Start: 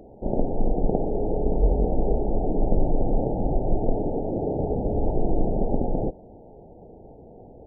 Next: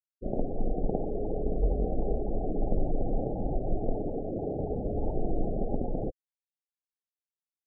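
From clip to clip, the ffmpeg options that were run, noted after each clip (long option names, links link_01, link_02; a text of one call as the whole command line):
ffmpeg -i in.wav -af "aemphasis=mode=production:type=75kf,afftfilt=real='re*gte(hypot(re,im),0.0794)':imag='im*gte(hypot(re,im),0.0794)':win_size=1024:overlap=0.75,volume=-6.5dB" out.wav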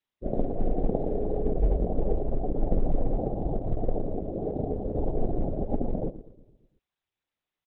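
ffmpeg -i in.wav -filter_complex "[0:a]asplit=2[link_01][link_02];[link_02]adelay=114,lowpass=frequency=800:poles=1,volume=-12.5dB,asplit=2[link_03][link_04];[link_04]adelay=114,lowpass=frequency=800:poles=1,volume=0.54,asplit=2[link_05][link_06];[link_06]adelay=114,lowpass=frequency=800:poles=1,volume=0.54,asplit=2[link_07][link_08];[link_08]adelay=114,lowpass=frequency=800:poles=1,volume=0.54,asplit=2[link_09][link_10];[link_10]adelay=114,lowpass=frequency=800:poles=1,volume=0.54,asplit=2[link_11][link_12];[link_12]adelay=114,lowpass=frequency=800:poles=1,volume=0.54[link_13];[link_03][link_05][link_07][link_09][link_11][link_13]amix=inputs=6:normalize=0[link_14];[link_01][link_14]amix=inputs=2:normalize=0,volume=2.5dB" -ar 48000 -c:a libopus -b:a 6k out.opus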